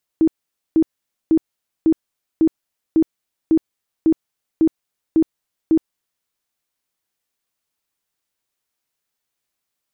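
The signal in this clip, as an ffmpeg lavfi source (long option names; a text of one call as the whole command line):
ffmpeg -f lavfi -i "aevalsrc='0.316*sin(2*PI*321*mod(t,0.55))*lt(mod(t,0.55),21/321)':duration=6.05:sample_rate=44100" out.wav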